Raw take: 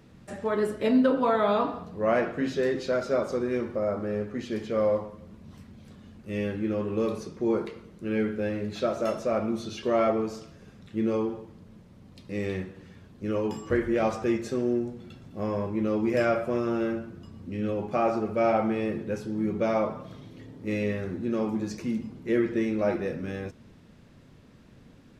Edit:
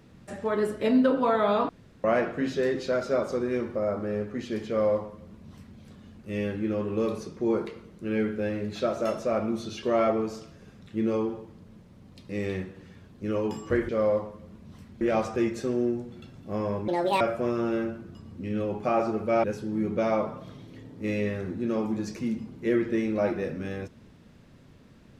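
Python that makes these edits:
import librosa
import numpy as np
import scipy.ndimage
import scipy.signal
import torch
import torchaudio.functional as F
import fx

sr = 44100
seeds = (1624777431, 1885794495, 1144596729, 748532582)

y = fx.edit(x, sr, fx.room_tone_fill(start_s=1.69, length_s=0.35),
    fx.duplicate(start_s=4.68, length_s=1.12, to_s=13.89),
    fx.speed_span(start_s=15.76, length_s=0.53, speed=1.62),
    fx.cut(start_s=18.52, length_s=0.55), tone=tone)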